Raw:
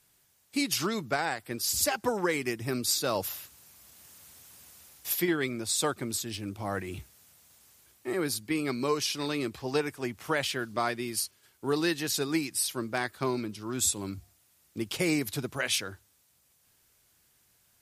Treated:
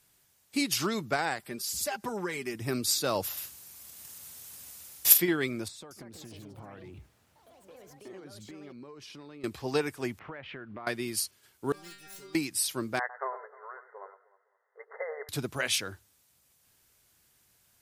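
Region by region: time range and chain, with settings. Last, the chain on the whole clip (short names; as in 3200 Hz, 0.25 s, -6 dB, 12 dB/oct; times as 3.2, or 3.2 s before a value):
1.39–2.55 comb 5 ms, depth 53% + compressor 1.5:1, threshold -41 dBFS
3.37–5.18 high shelf 4300 Hz +6.5 dB + transient shaper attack +9 dB, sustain +1 dB + doubler 44 ms -9.5 dB
5.68–9.44 LPF 1300 Hz 6 dB/oct + compressor 16:1, threshold -43 dBFS + echoes that change speed 0.227 s, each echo +5 st, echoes 3, each echo -6 dB
10.19–10.87 LPF 2400 Hz 24 dB/oct + compressor, threshold -39 dBFS
11.72–12.35 self-modulated delay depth 0.31 ms + low shelf 150 Hz +8.5 dB + metallic resonator 190 Hz, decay 0.57 s, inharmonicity 0.002
12.99–15.29 brick-wall FIR band-pass 410–2100 Hz + echo with dull and thin repeats by turns 0.102 s, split 1600 Hz, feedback 59%, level -12 dB
whole clip: dry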